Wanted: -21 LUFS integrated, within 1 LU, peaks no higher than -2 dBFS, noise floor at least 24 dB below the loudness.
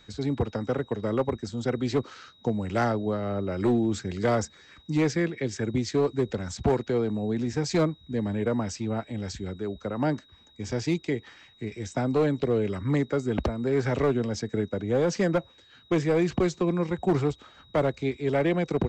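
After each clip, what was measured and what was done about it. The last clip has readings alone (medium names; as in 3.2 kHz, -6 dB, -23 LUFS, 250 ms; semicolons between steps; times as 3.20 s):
clipped samples 0.9%; clipping level -17.0 dBFS; steady tone 3.8 kHz; tone level -56 dBFS; loudness -27.5 LUFS; peak level -17.0 dBFS; loudness target -21.0 LUFS
-> clip repair -17 dBFS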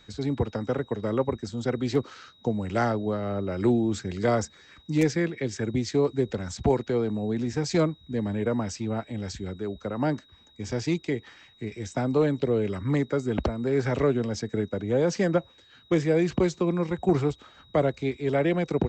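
clipped samples 0.0%; steady tone 3.8 kHz; tone level -56 dBFS
-> band-stop 3.8 kHz, Q 30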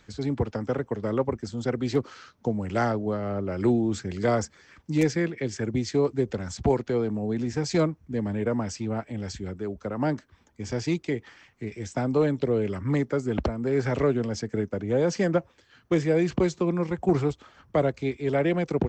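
steady tone not found; loudness -27.5 LUFS; peak level -9.5 dBFS; loudness target -21.0 LUFS
-> trim +6.5 dB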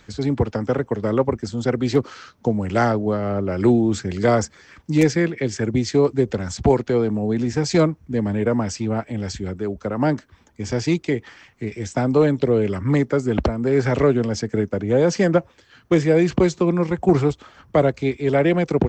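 loudness -21.0 LUFS; peak level -3.0 dBFS; noise floor -55 dBFS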